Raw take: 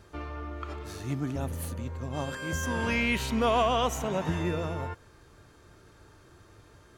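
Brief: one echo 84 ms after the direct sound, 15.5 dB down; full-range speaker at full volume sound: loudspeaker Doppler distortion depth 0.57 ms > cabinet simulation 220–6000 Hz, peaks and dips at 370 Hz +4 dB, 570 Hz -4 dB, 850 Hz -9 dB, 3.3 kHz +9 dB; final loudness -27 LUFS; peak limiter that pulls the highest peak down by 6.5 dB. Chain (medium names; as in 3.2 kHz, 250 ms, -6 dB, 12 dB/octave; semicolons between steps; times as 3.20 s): peak limiter -20.5 dBFS; delay 84 ms -15.5 dB; loudspeaker Doppler distortion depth 0.57 ms; cabinet simulation 220–6000 Hz, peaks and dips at 370 Hz +4 dB, 570 Hz -4 dB, 850 Hz -9 dB, 3.3 kHz +9 dB; trim +6 dB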